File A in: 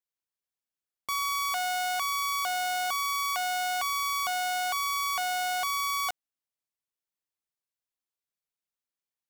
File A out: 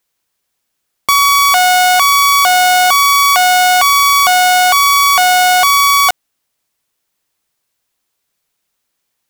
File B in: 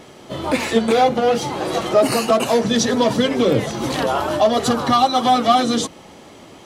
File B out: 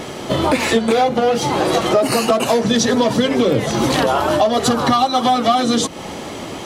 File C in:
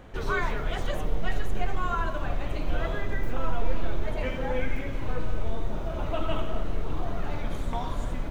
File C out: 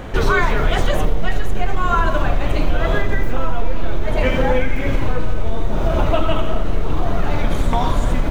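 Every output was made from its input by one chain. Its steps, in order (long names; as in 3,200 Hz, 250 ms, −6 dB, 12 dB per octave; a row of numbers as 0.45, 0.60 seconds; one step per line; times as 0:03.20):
downward compressor 4 to 1, threshold −28 dBFS
normalise the peak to −3 dBFS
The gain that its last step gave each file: +22.0, +13.0, +16.5 decibels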